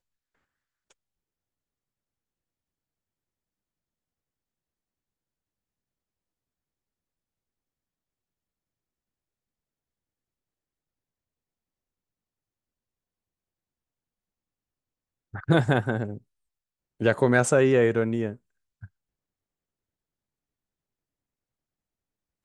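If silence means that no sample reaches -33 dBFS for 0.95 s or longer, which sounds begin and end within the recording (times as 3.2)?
15.34–18.84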